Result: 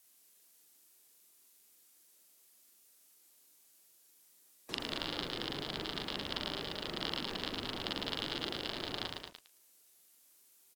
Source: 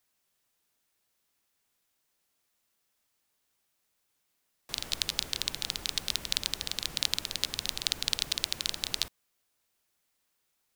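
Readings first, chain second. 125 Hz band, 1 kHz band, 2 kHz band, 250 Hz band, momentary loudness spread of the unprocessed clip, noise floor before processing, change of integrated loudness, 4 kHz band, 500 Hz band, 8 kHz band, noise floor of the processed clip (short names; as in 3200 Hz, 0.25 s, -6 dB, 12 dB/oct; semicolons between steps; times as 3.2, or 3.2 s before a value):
+0.5 dB, +4.0 dB, -2.5 dB, +7.0 dB, 4 LU, -78 dBFS, -7.0 dB, -7.0 dB, +7.0 dB, -19.0 dB, -66 dBFS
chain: bin magnitudes rounded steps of 15 dB; bell 320 Hz +8.5 dB 1.6 oct; added noise violet -62 dBFS; treble ducked by the level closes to 2000 Hz, closed at -35.5 dBFS; low shelf 120 Hz -9 dB; loudspeakers at several distances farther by 14 m -3 dB, 77 m -8 dB; lo-fi delay 0.109 s, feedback 35%, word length 9-bit, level -4 dB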